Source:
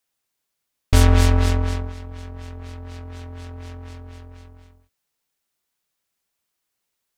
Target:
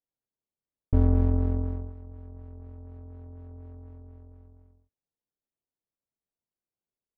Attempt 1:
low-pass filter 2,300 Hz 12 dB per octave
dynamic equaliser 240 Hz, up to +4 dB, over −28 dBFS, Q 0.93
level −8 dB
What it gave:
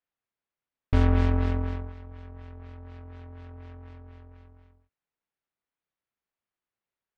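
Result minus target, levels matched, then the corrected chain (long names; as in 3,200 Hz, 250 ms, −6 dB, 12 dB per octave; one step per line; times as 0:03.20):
2,000 Hz band +17.0 dB
low-pass filter 590 Hz 12 dB per octave
dynamic equaliser 240 Hz, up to +4 dB, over −28 dBFS, Q 0.93
level −8 dB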